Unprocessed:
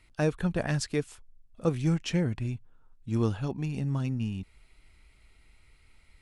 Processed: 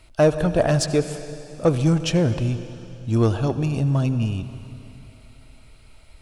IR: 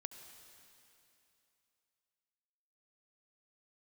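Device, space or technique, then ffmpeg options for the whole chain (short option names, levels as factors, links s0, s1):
saturated reverb return: -filter_complex "[0:a]equalizer=f=200:t=o:w=0.33:g=-7,equalizer=f=630:t=o:w=0.33:g=9,equalizer=f=2000:t=o:w=0.33:g=-10,asplit=2[s0][s1];[1:a]atrim=start_sample=2205[s2];[s1][s2]afir=irnorm=-1:irlink=0,asoftclip=type=tanh:threshold=0.0398,volume=2.37[s3];[s0][s3]amix=inputs=2:normalize=0,volume=1.41"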